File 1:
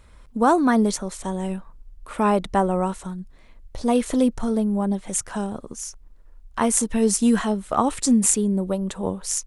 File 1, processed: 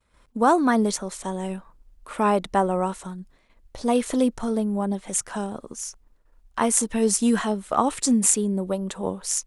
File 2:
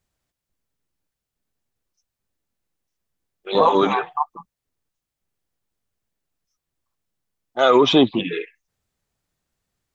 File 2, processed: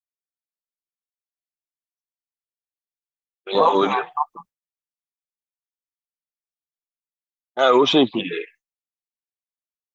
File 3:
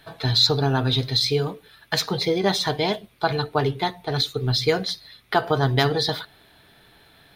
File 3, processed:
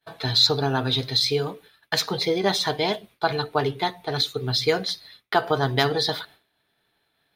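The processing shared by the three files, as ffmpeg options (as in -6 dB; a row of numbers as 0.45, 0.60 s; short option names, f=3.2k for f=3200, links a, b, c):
-af "agate=range=-33dB:threshold=-42dB:ratio=3:detection=peak,lowshelf=f=140:g=-9.5"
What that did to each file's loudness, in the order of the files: -1.5, -1.0, -1.0 LU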